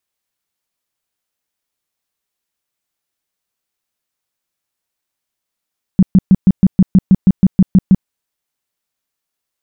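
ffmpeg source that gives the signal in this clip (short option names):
-f lavfi -i "aevalsrc='0.708*sin(2*PI*189*mod(t,0.16))*lt(mod(t,0.16),7/189)':d=2.08:s=44100"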